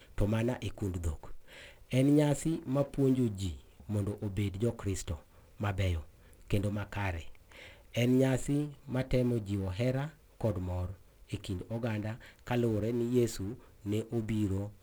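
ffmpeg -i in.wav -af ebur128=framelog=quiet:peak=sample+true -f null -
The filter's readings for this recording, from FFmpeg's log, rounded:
Integrated loudness:
  I:         -33.3 LUFS
  Threshold: -43.9 LUFS
Loudness range:
  LRA:         4.8 LU
  Threshold: -53.9 LUFS
  LRA low:   -36.6 LUFS
  LRA high:  -31.8 LUFS
Sample peak:
  Peak:      -14.8 dBFS
True peak:
  Peak:      -14.8 dBFS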